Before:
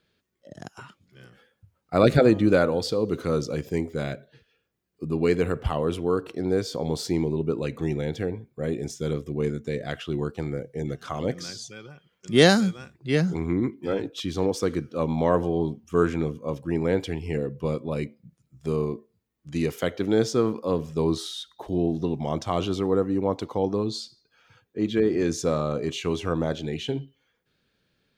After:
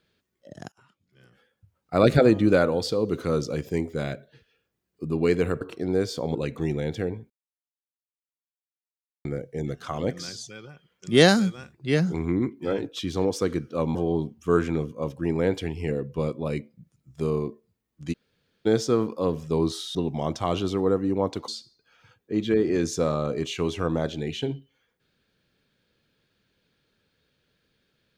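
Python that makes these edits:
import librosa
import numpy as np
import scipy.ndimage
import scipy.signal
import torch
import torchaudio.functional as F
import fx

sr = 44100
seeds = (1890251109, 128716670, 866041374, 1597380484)

y = fx.edit(x, sr, fx.fade_in_from(start_s=0.72, length_s=1.37, floor_db=-21.5),
    fx.cut(start_s=5.61, length_s=0.57),
    fx.cut(start_s=6.92, length_s=0.64),
    fx.silence(start_s=8.51, length_s=1.95),
    fx.cut(start_s=15.16, length_s=0.25),
    fx.room_tone_fill(start_s=19.59, length_s=0.53, crossfade_s=0.02),
    fx.cut(start_s=21.41, length_s=0.6),
    fx.cut(start_s=23.54, length_s=0.4), tone=tone)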